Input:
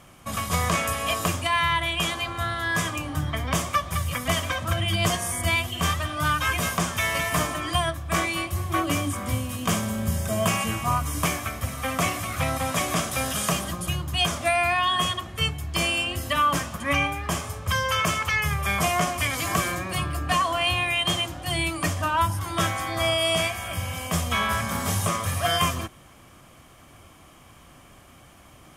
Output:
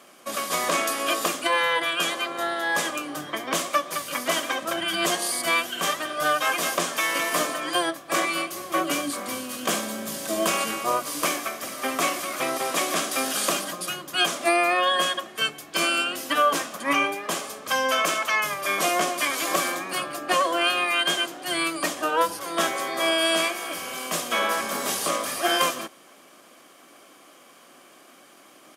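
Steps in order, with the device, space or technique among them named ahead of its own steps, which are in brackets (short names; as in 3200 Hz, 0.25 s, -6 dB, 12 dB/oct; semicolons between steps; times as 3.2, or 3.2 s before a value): octave pedal (harmoniser -12 st -4 dB); HPF 250 Hz 24 dB/oct; high shelf 10000 Hz +12 dB; high shelf 12000 Hz -11.5 dB; notch 900 Hz, Q 11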